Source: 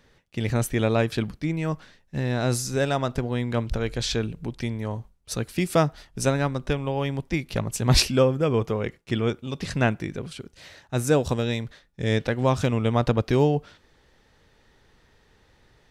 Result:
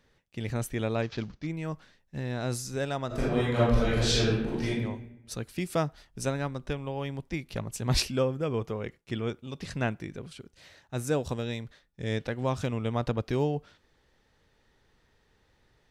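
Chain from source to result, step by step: 1.02–1.47 s: CVSD coder 32 kbps; 3.07–4.68 s: reverb throw, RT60 0.99 s, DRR -10 dB; trim -7.5 dB

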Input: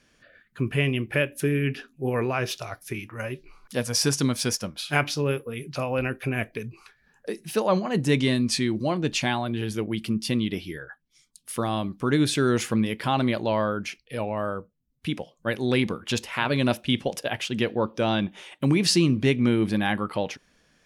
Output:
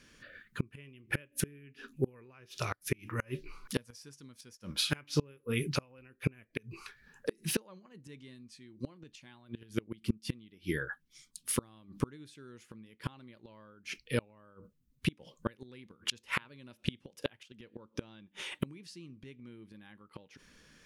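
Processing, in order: inverted gate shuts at -19 dBFS, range -32 dB; peaking EQ 700 Hz -11 dB 0.45 oct; trim +3 dB

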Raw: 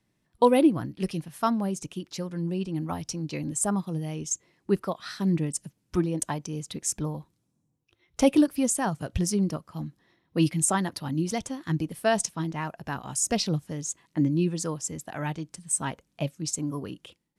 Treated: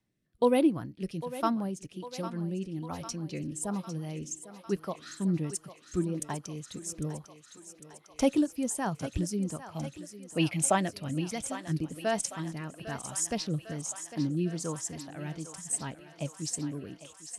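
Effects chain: 9.65–11.21 s: fifteen-band graphic EQ 100 Hz +5 dB, 630 Hz +11 dB, 2.5 kHz +12 dB; thinning echo 802 ms, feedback 74%, high-pass 420 Hz, level -11 dB; rotary cabinet horn 1.2 Hz; trim -3.5 dB

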